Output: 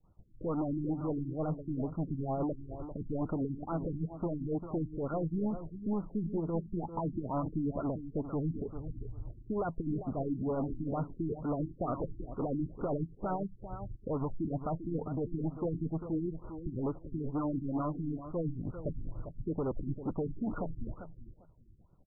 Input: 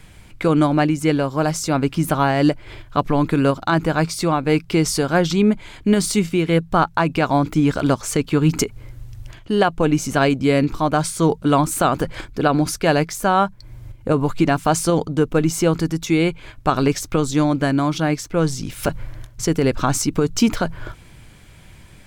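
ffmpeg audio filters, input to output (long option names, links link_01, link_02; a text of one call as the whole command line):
ffmpeg -i in.wav -filter_complex "[0:a]agate=range=-33dB:threshold=-33dB:ratio=3:detection=peak,asplit=2[link_01][link_02];[link_02]acompressor=threshold=-27dB:ratio=6,volume=-1dB[link_03];[link_01][link_03]amix=inputs=2:normalize=0,volume=11.5dB,asoftclip=hard,volume=-11.5dB,acrossover=split=1000[link_04][link_05];[link_04]aeval=exprs='val(0)*(1-0.7/2+0.7/2*cos(2*PI*9.9*n/s))':channel_layout=same[link_06];[link_05]aeval=exprs='val(0)*(1-0.7/2-0.7/2*cos(2*PI*9.9*n/s))':channel_layout=same[link_07];[link_06][link_07]amix=inputs=2:normalize=0,asoftclip=type=tanh:threshold=-23dB,aecho=1:1:396|792|1188:0.282|0.0535|0.0102,afftfilt=real='re*lt(b*sr/1024,360*pow(1500/360,0.5+0.5*sin(2*PI*2.2*pts/sr)))':imag='im*lt(b*sr/1024,360*pow(1500/360,0.5+0.5*sin(2*PI*2.2*pts/sr)))':win_size=1024:overlap=0.75,volume=-6.5dB" out.wav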